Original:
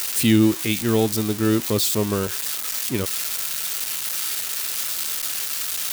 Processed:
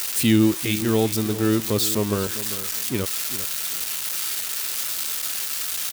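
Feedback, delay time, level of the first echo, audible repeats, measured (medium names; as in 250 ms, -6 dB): 24%, 397 ms, -13.5 dB, 2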